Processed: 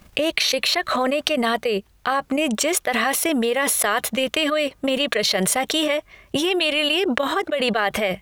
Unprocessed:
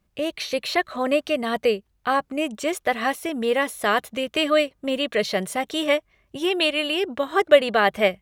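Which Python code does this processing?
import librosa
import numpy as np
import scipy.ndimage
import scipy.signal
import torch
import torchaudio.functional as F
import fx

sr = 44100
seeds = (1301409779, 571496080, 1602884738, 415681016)

y = fx.low_shelf(x, sr, hz=480.0, db=-5.5)
y = fx.transient(y, sr, attack_db=9, sustain_db=-6)
y = fx.env_flatten(y, sr, amount_pct=100)
y = y * librosa.db_to_amplitude(-17.5)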